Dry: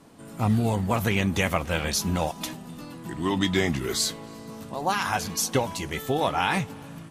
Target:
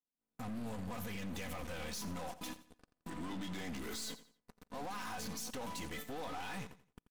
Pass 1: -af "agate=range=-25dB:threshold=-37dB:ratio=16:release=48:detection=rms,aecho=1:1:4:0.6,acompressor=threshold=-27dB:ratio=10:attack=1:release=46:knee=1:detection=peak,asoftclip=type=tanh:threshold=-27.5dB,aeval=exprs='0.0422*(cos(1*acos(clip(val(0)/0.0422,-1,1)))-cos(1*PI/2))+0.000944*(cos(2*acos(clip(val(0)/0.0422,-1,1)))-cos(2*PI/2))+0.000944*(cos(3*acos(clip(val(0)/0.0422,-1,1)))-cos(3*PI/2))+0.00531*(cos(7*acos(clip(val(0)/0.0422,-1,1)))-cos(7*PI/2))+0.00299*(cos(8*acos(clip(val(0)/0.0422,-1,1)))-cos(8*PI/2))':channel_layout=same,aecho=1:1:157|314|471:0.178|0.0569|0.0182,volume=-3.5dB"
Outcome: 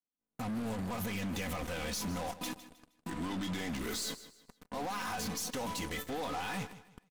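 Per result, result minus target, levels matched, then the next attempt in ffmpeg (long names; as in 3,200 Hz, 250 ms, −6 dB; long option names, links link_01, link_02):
echo 71 ms late; soft clipping: distortion −7 dB
-af "agate=range=-25dB:threshold=-37dB:ratio=16:release=48:detection=rms,aecho=1:1:4:0.6,acompressor=threshold=-27dB:ratio=10:attack=1:release=46:knee=1:detection=peak,asoftclip=type=tanh:threshold=-27.5dB,aeval=exprs='0.0422*(cos(1*acos(clip(val(0)/0.0422,-1,1)))-cos(1*PI/2))+0.000944*(cos(2*acos(clip(val(0)/0.0422,-1,1)))-cos(2*PI/2))+0.000944*(cos(3*acos(clip(val(0)/0.0422,-1,1)))-cos(3*PI/2))+0.00531*(cos(7*acos(clip(val(0)/0.0422,-1,1)))-cos(7*PI/2))+0.00299*(cos(8*acos(clip(val(0)/0.0422,-1,1)))-cos(8*PI/2))':channel_layout=same,aecho=1:1:86|172|258:0.178|0.0569|0.0182,volume=-3.5dB"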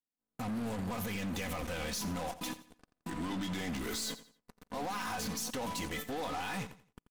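soft clipping: distortion −7 dB
-af "agate=range=-25dB:threshold=-37dB:ratio=16:release=48:detection=rms,aecho=1:1:4:0.6,acompressor=threshold=-27dB:ratio=10:attack=1:release=46:knee=1:detection=peak,asoftclip=type=tanh:threshold=-35dB,aeval=exprs='0.0422*(cos(1*acos(clip(val(0)/0.0422,-1,1)))-cos(1*PI/2))+0.000944*(cos(2*acos(clip(val(0)/0.0422,-1,1)))-cos(2*PI/2))+0.000944*(cos(3*acos(clip(val(0)/0.0422,-1,1)))-cos(3*PI/2))+0.00531*(cos(7*acos(clip(val(0)/0.0422,-1,1)))-cos(7*PI/2))+0.00299*(cos(8*acos(clip(val(0)/0.0422,-1,1)))-cos(8*PI/2))':channel_layout=same,aecho=1:1:86|172|258:0.178|0.0569|0.0182,volume=-3.5dB"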